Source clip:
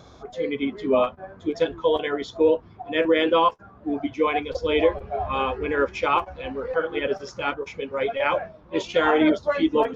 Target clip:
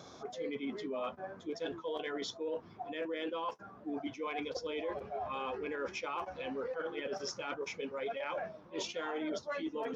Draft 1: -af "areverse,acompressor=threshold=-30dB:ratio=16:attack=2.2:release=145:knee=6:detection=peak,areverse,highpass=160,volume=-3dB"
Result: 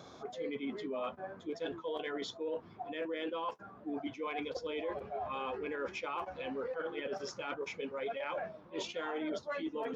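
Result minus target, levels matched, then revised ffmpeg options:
8000 Hz band -4.5 dB
-af "areverse,acompressor=threshold=-30dB:ratio=16:attack=2.2:release=145:knee=6:detection=peak,areverse,highpass=160,equalizer=f=5.7k:t=o:w=0.47:g=6.5,volume=-3dB"

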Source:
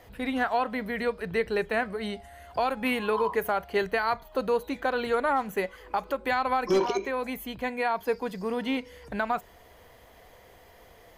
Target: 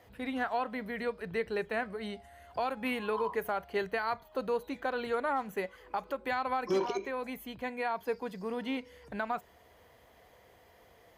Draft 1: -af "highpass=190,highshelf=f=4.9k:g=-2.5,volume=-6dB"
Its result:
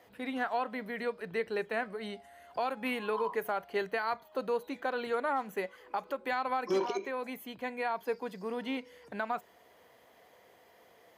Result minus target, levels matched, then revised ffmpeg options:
125 Hz band -3.5 dB
-af "highpass=59,highshelf=f=4.9k:g=-2.5,volume=-6dB"

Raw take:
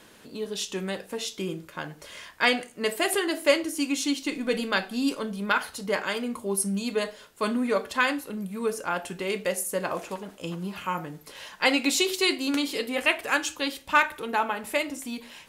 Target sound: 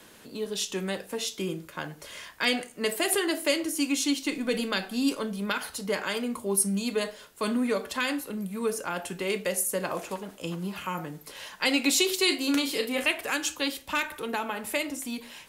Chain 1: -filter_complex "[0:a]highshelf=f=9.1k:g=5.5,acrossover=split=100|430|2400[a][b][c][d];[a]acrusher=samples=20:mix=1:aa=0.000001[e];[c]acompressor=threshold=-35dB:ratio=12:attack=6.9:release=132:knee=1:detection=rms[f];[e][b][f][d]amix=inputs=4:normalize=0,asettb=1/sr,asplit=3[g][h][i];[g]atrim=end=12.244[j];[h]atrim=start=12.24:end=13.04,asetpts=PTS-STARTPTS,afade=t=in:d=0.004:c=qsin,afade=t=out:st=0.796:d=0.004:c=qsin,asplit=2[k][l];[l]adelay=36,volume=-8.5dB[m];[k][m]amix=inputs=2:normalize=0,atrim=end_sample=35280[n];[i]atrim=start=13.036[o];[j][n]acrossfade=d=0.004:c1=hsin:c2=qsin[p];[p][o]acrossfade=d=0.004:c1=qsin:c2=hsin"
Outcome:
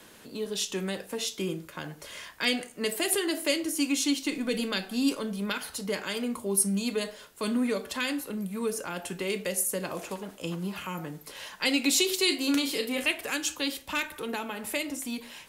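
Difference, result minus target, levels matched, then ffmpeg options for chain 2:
compressor: peak gain reduction +6.5 dB
-filter_complex "[0:a]highshelf=f=9.1k:g=5.5,acrossover=split=100|430|2400[a][b][c][d];[a]acrusher=samples=20:mix=1:aa=0.000001[e];[c]acompressor=threshold=-28dB:ratio=12:attack=6.9:release=132:knee=1:detection=rms[f];[e][b][f][d]amix=inputs=4:normalize=0,asettb=1/sr,asplit=3[g][h][i];[g]atrim=end=12.244[j];[h]atrim=start=12.24:end=13.04,asetpts=PTS-STARTPTS,afade=t=in:d=0.004:c=qsin,afade=t=out:st=0.796:d=0.004:c=qsin,asplit=2[k][l];[l]adelay=36,volume=-8.5dB[m];[k][m]amix=inputs=2:normalize=0,atrim=end_sample=35280[n];[i]atrim=start=13.036[o];[j][n]acrossfade=d=0.004:c1=hsin:c2=qsin[p];[p][o]acrossfade=d=0.004:c1=qsin:c2=hsin"

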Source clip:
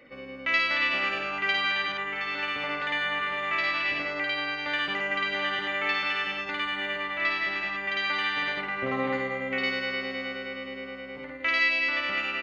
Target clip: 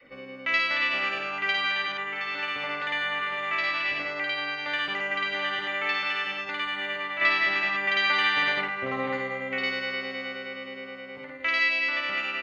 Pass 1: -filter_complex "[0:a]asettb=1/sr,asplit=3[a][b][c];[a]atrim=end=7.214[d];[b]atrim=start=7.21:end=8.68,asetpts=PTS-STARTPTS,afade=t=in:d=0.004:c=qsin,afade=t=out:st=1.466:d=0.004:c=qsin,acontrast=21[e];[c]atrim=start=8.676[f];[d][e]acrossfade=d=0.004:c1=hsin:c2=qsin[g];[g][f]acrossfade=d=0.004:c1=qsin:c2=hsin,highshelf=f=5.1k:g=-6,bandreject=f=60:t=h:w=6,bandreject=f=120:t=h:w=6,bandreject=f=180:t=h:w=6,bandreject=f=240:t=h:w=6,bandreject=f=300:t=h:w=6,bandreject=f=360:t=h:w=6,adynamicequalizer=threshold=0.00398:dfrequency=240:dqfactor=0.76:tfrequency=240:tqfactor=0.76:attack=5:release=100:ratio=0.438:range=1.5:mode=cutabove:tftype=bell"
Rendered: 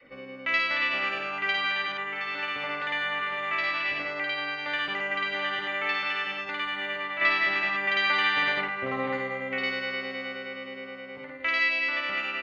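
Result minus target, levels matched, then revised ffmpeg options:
8000 Hz band -3.0 dB
-filter_complex "[0:a]asettb=1/sr,asplit=3[a][b][c];[a]atrim=end=7.214[d];[b]atrim=start=7.21:end=8.68,asetpts=PTS-STARTPTS,afade=t=in:d=0.004:c=qsin,afade=t=out:st=1.466:d=0.004:c=qsin,acontrast=21[e];[c]atrim=start=8.676[f];[d][e]acrossfade=d=0.004:c1=hsin:c2=qsin[g];[g][f]acrossfade=d=0.004:c1=qsin:c2=hsin,bandreject=f=60:t=h:w=6,bandreject=f=120:t=h:w=6,bandreject=f=180:t=h:w=6,bandreject=f=240:t=h:w=6,bandreject=f=300:t=h:w=6,bandreject=f=360:t=h:w=6,adynamicequalizer=threshold=0.00398:dfrequency=240:dqfactor=0.76:tfrequency=240:tqfactor=0.76:attack=5:release=100:ratio=0.438:range=1.5:mode=cutabove:tftype=bell"

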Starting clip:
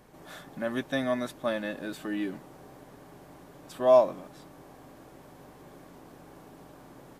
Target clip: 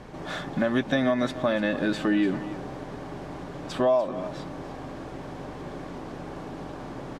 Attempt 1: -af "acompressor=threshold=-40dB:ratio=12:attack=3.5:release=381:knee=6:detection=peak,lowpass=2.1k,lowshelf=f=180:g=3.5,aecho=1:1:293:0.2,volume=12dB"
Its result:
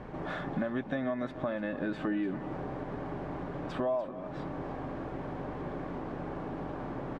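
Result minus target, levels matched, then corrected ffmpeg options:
compressor: peak gain reduction +9 dB; 4000 Hz band -7.5 dB
-af "acompressor=threshold=-30dB:ratio=12:attack=3.5:release=381:knee=6:detection=peak,lowpass=5.3k,lowshelf=f=180:g=3.5,aecho=1:1:293:0.2,volume=12dB"

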